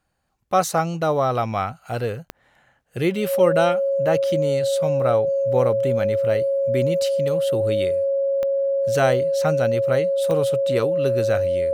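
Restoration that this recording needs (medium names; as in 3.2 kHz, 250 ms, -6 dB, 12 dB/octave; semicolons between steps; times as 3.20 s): de-click; band-stop 550 Hz, Q 30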